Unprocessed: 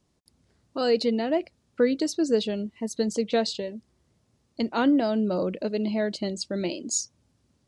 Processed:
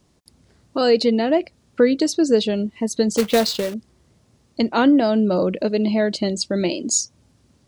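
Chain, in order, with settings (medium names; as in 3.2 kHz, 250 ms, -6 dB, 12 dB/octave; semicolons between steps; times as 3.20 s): in parallel at -2.5 dB: compression, threshold -32 dBFS, peak gain reduction 14.5 dB; 3.17–3.74 s: on the sum: companded quantiser 4-bit; trim +5 dB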